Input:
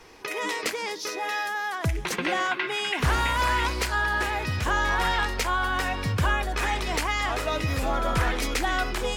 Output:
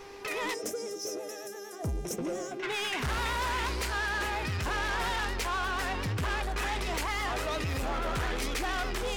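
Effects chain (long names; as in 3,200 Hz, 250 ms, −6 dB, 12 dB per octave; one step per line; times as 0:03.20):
gain on a spectral selection 0:00.54–0:02.63, 730–5,100 Hz −21 dB
soft clipping −28.5 dBFS, distortion −8 dB
pitch vibrato 8.5 Hz 61 cents
hum with harmonics 400 Hz, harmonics 19, −48 dBFS −8 dB per octave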